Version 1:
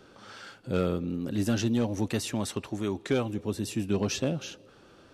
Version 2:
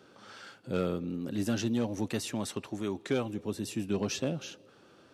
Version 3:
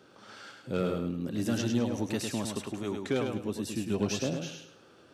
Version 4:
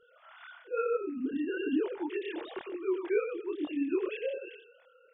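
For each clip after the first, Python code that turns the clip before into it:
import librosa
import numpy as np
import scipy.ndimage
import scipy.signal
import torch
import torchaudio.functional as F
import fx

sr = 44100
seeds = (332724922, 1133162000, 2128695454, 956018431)

y1 = scipy.signal.sosfilt(scipy.signal.butter(2, 110.0, 'highpass', fs=sr, output='sos'), x)
y1 = y1 * 10.0 ** (-3.0 / 20.0)
y2 = fx.echo_feedback(y1, sr, ms=104, feedback_pct=29, wet_db=-5)
y3 = fx.sine_speech(y2, sr)
y3 = fx.chorus_voices(y3, sr, voices=2, hz=1.1, base_ms=26, depth_ms=3.7, mix_pct=50)
y3 = y3 * 10.0 ** (1.5 / 20.0)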